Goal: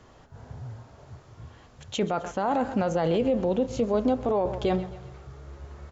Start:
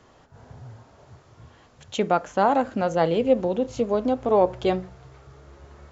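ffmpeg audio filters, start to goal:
-filter_complex "[0:a]asplit=2[a][b];[b]aecho=0:1:131|262|393|524:0.112|0.0561|0.0281|0.014[c];[a][c]amix=inputs=2:normalize=0,alimiter=limit=-16.5dB:level=0:latency=1:release=11,lowshelf=f=110:g=7.5"

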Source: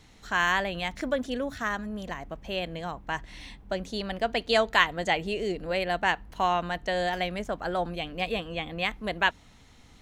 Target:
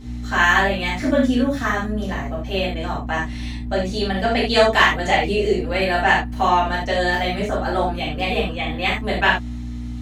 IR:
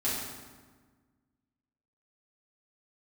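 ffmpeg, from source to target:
-filter_complex "[0:a]acontrast=29,aeval=exprs='val(0)+0.02*(sin(2*PI*60*n/s)+sin(2*PI*2*60*n/s)/2+sin(2*PI*3*60*n/s)/3+sin(2*PI*4*60*n/s)/4+sin(2*PI*5*60*n/s)/5)':c=same[a];[1:a]atrim=start_sample=2205,atrim=end_sample=4410[b];[a][b]afir=irnorm=-1:irlink=0,volume=-2.5dB"

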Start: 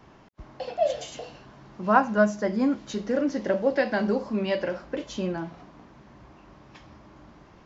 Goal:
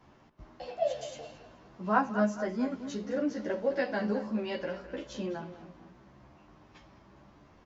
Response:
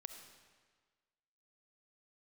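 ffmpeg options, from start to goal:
-filter_complex "[0:a]asplit=2[a][b];[b]adelay=211,lowpass=f=4.1k:p=1,volume=-12.5dB,asplit=2[c][d];[d]adelay=211,lowpass=f=4.1k:p=1,volume=0.4,asplit=2[e][f];[f]adelay=211,lowpass=f=4.1k:p=1,volume=0.4,asplit=2[g][h];[h]adelay=211,lowpass=f=4.1k:p=1,volume=0.4[i];[c][e][g][i]amix=inputs=4:normalize=0[j];[a][j]amix=inputs=2:normalize=0,asplit=2[k][l];[l]adelay=11.4,afreqshift=0.95[m];[k][m]amix=inputs=2:normalize=1,volume=-3.5dB"

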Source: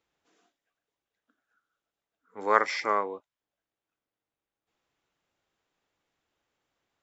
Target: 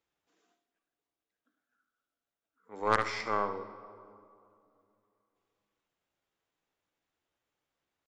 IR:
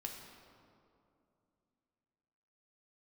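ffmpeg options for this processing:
-filter_complex "[0:a]aeval=exprs='0.631*(cos(1*acos(clip(val(0)/0.631,-1,1)))-cos(1*PI/2))+0.0891*(cos(4*acos(clip(val(0)/0.631,-1,1)))-cos(4*PI/2))+0.0794*(cos(5*acos(clip(val(0)/0.631,-1,1)))-cos(5*PI/2))+0.0562*(cos(7*acos(clip(val(0)/0.631,-1,1)))-cos(7*PI/2))':c=same,atempo=0.87,asplit=2[a][b];[1:a]atrim=start_sample=2205,adelay=73[c];[b][c]afir=irnorm=-1:irlink=0,volume=-7.5dB[d];[a][d]amix=inputs=2:normalize=0,volume=-6dB"

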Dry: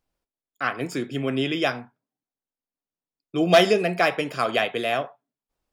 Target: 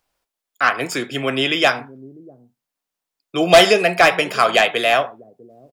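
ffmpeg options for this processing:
-filter_complex "[0:a]acrossover=split=550[a][b];[a]aecho=1:1:649:0.211[c];[b]aeval=exprs='0.596*sin(PI/2*2.24*val(0)/0.596)':c=same[d];[c][d]amix=inputs=2:normalize=0"

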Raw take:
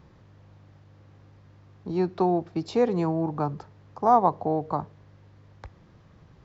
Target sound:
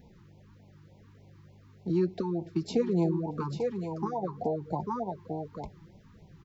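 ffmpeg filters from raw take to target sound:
-filter_complex "[0:a]aemphasis=mode=production:type=75fm,aecho=1:1:842:0.398,asplit=2[a][b];[b]alimiter=limit=-17.5dB:level=0:latency=1:release=85,volume=2.5dB[c];[a][c]amix=inputs=2:normalize=0,highshelf=f=2.1k:g=-11,acompressor=threshold=-19dB:ratio=4,flanger=delay=4:depth=2.2:regen=28:speed=1.8:shape=triangular,afftfilt=real='re*(1-between(b*sr/1024,570*pow(1500/570,0.5+0.5*sin(2*PI*3.4*pts/sr))/1.41,570*pow(1500/570,0.5+0.5*sin(2*PI*3.4*pts/sr))*1.41))':imag='im*(1-between(b*sr/1024,570*pow(1500/570,0.5+0.5*sin(2*PI*3.4*pts/sr))/1.41,570*pow(1500/570,0.5+0.5*sin(2*PI*3.4*pts/sr))*1.41))':win_size=1024:overlap=0.75,volume=-2.5dB"

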